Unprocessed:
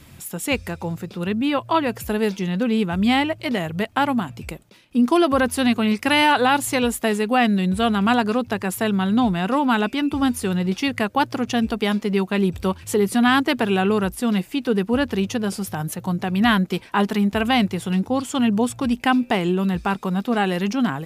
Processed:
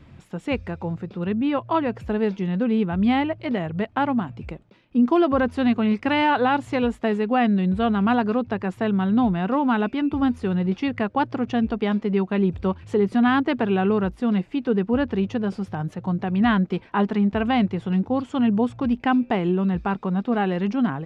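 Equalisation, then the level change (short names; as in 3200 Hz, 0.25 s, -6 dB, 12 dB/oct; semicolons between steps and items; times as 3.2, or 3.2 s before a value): tape spacing loss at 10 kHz 30 dB; 0.0 dB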